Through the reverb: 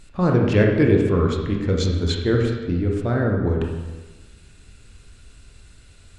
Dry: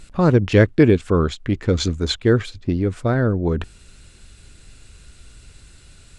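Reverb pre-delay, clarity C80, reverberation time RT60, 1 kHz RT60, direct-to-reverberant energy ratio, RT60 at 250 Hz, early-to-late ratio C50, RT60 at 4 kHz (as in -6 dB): 20 ms, 5.0 dB, 1.3 s, 1.2 s, 0.0 dB, 1.3 s, 2.5 dB, 1.1 s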